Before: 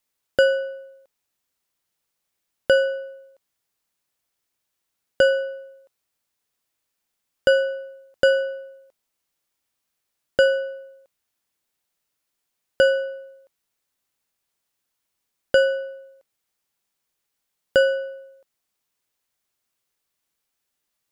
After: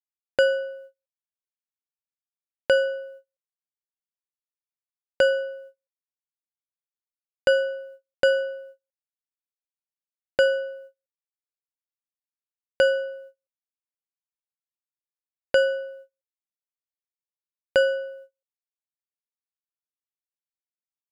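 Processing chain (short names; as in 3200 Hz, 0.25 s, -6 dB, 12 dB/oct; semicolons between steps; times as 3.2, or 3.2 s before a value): gate -42 dBFS, range -36 dB; gain -2.5 dB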